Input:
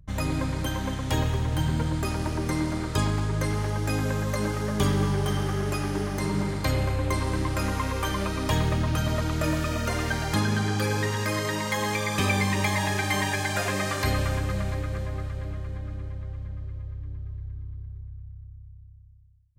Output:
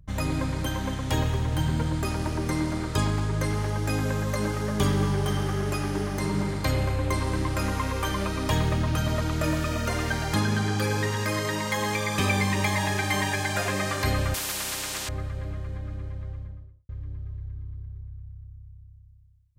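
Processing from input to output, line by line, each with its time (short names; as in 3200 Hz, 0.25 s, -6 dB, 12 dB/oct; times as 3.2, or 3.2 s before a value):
14.34–15.09 spectral compressor 10:1
16.25–16.89 studio fade out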